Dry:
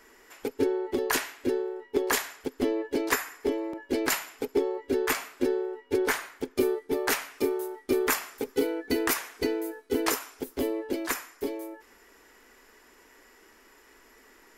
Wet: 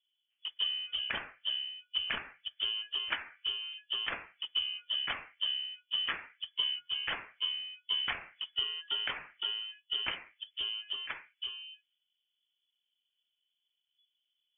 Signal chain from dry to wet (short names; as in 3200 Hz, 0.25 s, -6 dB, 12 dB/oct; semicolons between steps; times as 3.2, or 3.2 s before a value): low-pass opened by the level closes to 340 Hz, open at -22.5 dBFS; spectral noise reduction 12 dB; inverted band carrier 3400 Hz; gain -7.5 dB